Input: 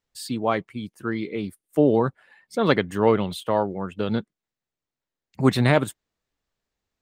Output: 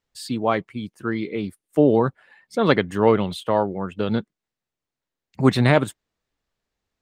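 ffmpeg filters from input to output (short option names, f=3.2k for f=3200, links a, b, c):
-af "highshelf=f=11k:g=-9.5,volume=2dB"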